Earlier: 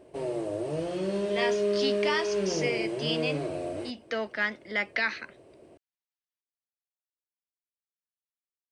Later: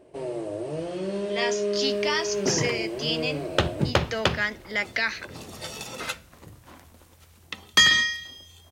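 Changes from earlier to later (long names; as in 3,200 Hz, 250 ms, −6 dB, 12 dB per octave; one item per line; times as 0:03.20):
speech: remove high-frequency loss of the air 150 metres
second sound: unmuted
reverb: on, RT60 0.65 s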